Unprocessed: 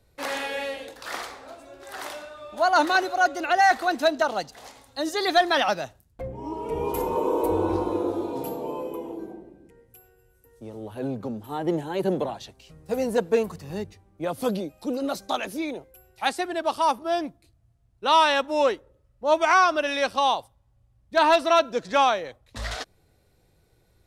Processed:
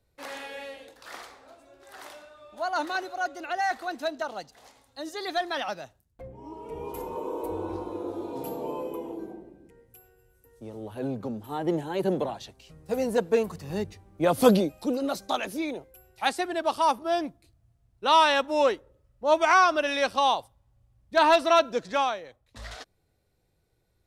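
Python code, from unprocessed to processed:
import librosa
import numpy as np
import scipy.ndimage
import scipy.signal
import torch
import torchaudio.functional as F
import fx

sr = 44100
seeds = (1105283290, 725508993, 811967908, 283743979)

y = fx.gain(x, sr, db=fx.line((7.93, -9.0), (8.62, -1.5), (13.46, -1.5), (14.51, 8.0), (15.01, -1.0), (21.74, -1.0), (22.21, -9.0)))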